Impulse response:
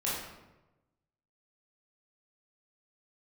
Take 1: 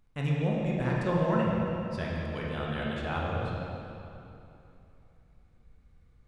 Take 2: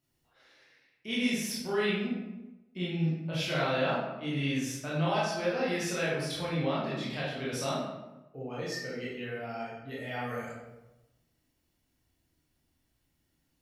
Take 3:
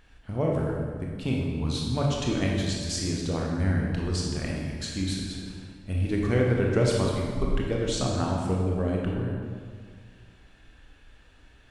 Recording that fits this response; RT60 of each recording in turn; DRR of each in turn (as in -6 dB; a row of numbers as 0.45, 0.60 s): 2; 2.9, 1.0, 1.8 s; -4.5, -8.0, -2.0 dB